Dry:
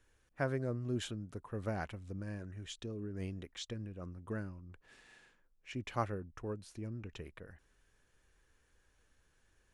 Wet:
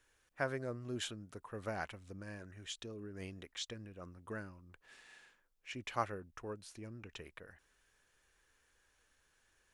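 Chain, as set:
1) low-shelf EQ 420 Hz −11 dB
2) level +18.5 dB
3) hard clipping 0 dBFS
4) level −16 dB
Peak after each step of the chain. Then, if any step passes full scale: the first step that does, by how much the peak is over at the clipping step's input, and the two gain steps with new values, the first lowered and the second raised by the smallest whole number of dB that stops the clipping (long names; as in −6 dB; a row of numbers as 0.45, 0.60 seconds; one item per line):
−21.0, −2.5, −2.5, −18.5 dBFS
no step passes full scale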